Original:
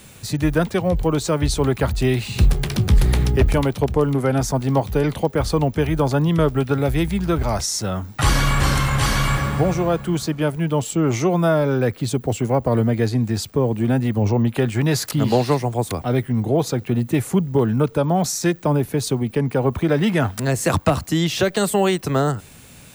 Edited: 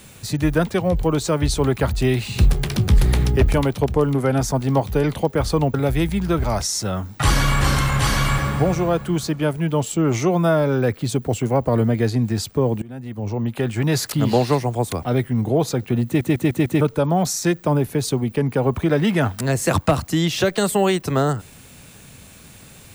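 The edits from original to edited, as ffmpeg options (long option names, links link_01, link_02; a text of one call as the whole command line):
ffmpeg -i in.wav -filter_complex "[0:a]asplit=8[link_01][link_02][link_03][link_04][link_05][link_06][link_07][link_08];[link_01]atrim=end=5.742[link_09];[link_02]atrim=start=6.728:end=13.81,asetpts=PTS-STARTPTS,afade=type=out:start_time=7.078:duration=0.004:curve=hsin:silence=0.0707946[link_10];[link_03]atrim=start=13.81:end=17.202,asetpts=PTS-STARTPTS,afade=type=in:duration=1.16:silence=0.0707946[link_11];[link_04]atrim=start=17.048:end=17.202[link_12];[link_05]atrim=start=17.048:end=17.202[link_13];[link_06]atrim=start=17.048:end=17.202[link_14];[link_07]atrim=start=17.048:end=17.202[link_15];[link_08]atrim=start=17.798[link_16];[link_10][link_11]concat=n=2:v=0:a=1[link_17];[link_09][link_17]acrossfade=duration=0.004:curve1=hsin:curve2=hsin[link_18];[link_18][link_12]acrossfade=duration=0.004:curve1=hsin:curve2=hsin[link_19];[link_19][link_13]acrossfade=duration=0.004:curve1=hsin:curve2=hsin[link_20];[link_20][link_14]acrossfade=duration=0.004:curve1=hsin:curve2=hsin[link_21];[link_21][link_15]acrossfade=duration=0.004:curve1=hsin:curve2=hsin[link_22];[link_22][link_16]acrossfade=duration=0.004:curve1=hsin:curve2=hsin" out.wav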